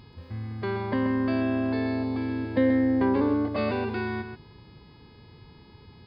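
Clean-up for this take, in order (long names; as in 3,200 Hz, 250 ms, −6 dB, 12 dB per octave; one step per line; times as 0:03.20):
hum removal 420.5 Hz, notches 12
echo removal 131 ms −9 dB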